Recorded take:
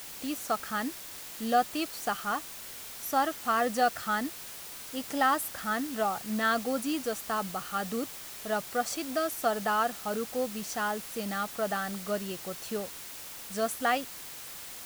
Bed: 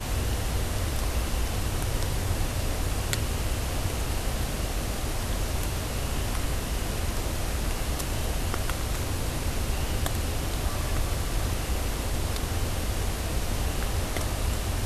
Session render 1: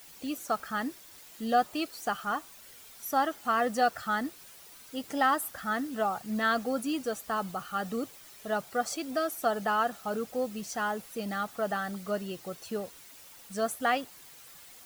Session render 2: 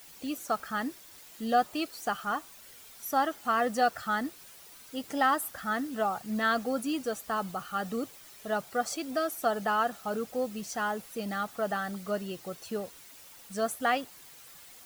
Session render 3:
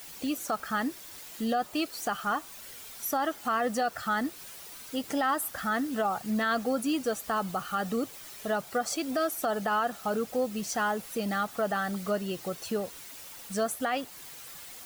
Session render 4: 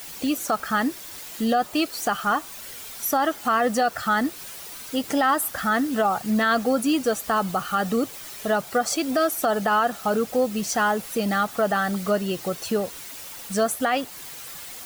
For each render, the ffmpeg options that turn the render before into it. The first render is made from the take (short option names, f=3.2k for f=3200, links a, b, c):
-af "afftdn=nr=10:nf=-44"
-af anull
-filter_complex "[0:a]asplit=2[a][b];[b]acompressor=threshold=-37dB:ratio=6,volume=0dB[c];[a][c]amix=inputs=2:normalize=0,alimiter=limit=-19.5dB:level=0:latency=1:release=45"
-af "volume=7dB"